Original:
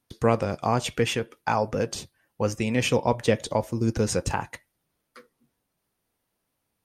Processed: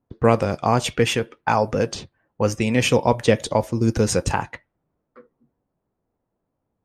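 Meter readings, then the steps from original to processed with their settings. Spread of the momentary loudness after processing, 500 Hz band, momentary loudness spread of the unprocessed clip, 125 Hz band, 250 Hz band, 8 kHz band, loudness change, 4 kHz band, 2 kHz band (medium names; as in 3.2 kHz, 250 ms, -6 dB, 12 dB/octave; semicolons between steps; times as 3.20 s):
7 LU, +5.0 dB, 7 LU, +5.0 dB, +5.0 dB, +4.5 dB, +5.0 dB, +5.0 dB, +5.0 dB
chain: level-controlled noise filter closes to 820 Hz, open at -21.5 dBFS; trim +5 dB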